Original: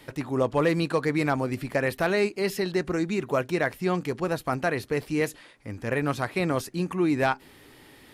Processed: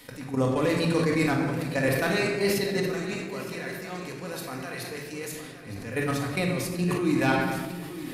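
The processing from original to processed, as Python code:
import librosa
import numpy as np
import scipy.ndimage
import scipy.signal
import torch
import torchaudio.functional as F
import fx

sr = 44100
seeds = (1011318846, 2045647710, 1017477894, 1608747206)

y = fx.high_shelf(x, sr, hz=3400.0, db=10.5)
y = fx.hpss(y, sr, part='percussive', gain_db=-5)
y = fx.low_shelf(y, sr, hz=400.0, db=-9.5, at=(2.87, 5.23), fade=0.02)
y = fx.level_steps(y, sr, step_db=13)
y = fx.echo_feedback(y, sr, ms=913, feedback_pct=43, wet_db=-13.0)
y = fx.room_shoebox(y, sr, seeds[0], volume_m3=1300.0, walls='mixed', distance_m=1.9)
y = fx.sustainer(y, sr, db_per_s=34.0)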